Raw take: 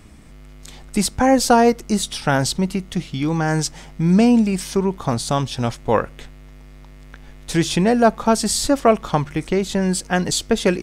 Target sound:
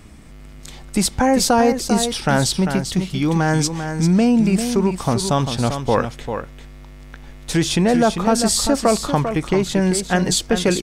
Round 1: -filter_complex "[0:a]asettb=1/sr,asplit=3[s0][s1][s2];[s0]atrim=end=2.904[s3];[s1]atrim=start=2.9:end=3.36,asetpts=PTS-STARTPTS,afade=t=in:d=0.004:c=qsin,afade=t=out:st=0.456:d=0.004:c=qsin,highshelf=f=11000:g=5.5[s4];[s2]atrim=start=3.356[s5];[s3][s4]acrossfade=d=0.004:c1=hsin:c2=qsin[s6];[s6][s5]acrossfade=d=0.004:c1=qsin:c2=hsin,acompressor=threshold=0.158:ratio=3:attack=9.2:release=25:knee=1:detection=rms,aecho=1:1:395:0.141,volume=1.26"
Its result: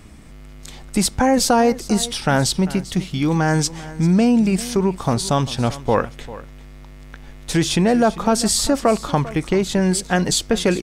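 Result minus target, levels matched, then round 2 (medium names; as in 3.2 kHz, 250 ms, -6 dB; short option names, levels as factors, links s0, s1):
echo-to-direct -9 dB
-filter_complex "[0:a]asettb=1/sr,asplit=3[s0][s1][s2];[s0]atrim=end=2.904[s3];[s1]atrim=start=2.9:end=3.36,asetpts=PTS-STARTPTS,afade=t=in:d=0.004:c=qsin,afade=t=out:st=0.456:d=0.004:c=qsin,highshelf=f=11000:g=5.5[s4];[s2]atrim=start=3.356[s5];[s3][s4]acrossfade=d=0.004:c1=hsin:c2=qsin[s6];[s6][s5]acrossfade=d=0.004:c1=qsin:c2=hsin,acompressor=threshold=0.158:ratio=3:attack=9.2:release=25:knee=1:detection=rms,aecho=1:1:395:0.398,volume=1.26"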